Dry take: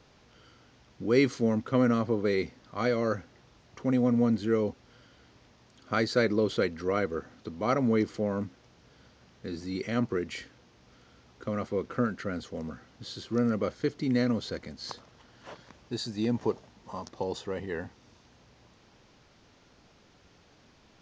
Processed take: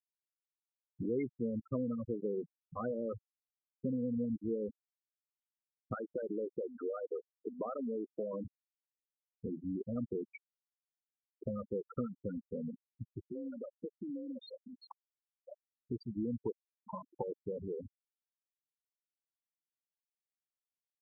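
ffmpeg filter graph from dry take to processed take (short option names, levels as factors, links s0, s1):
-filter_complex "[0:a]asettb=1/sr,asplit=3[s0][s1][s2];[s0]atrim=end=5.944[s3];[s1]atrim=start=5.94:end=8.45,asetpts=PTS-STARTPTS,afade=t=in:d=0.004:c=qsin,afade=t=out:st=2.506:d=0.004:c=qsin,highpass=f=190:p=1,acompressor=threshold=0.0398:ratio=6:attack=3.2:release=140:knee=1:detection=peak,asplit=2[s4][s5];[s5]highpass=f=720:p=1,volume=4.47,asoftclip=type=tanh:threshold=0.168[s6];[s4][s6]amix=inputs=2:normalize=0,lowpass=f=1000:p=1,volume=0.501[s7];[s2]atrim=start=8.446[s8];[s3][s7]acrossfade=d=0.004:c1=hsin:c2=qsin[s9];[s9][s8]acrossfade=d=0.004:c1=qsin:c2=hsin,asettb=1/sr,asplit=3[s10][s11][s12];[s10]atrim=end=13.244[s13];[s11]atrim=start=13.24:end=14.79,asetpts=PTS-STARTPTS,afade=t=in:d=0.004:c=qsin,afade=t=out:st=1.546:d=0.004:c=qsin,acompressor=threshold=0.0141:ratio=4:attack=3.2:release=140:knee=1:detection=peak,afreqshift=34,tiltshelf=f=680:g=-5[s14];[s12]atrim=start=14.786[s15];[s13][s14]acrossfade=d=0.004:c1=hsin:c2=qsin[s16];[s16][s15]acrossfade=d=0.004:c1=qsin:c2=hsin,acompressor=threshold=0.00891:ratio=3,lowpass=f=2800:p=1,afftfilt=real='re*gte(hypot(re,im),0.0316)':imag='im*gte(hypot(re,im),0.0316)':win_size=1024:overlap=0.75,volume=1.58"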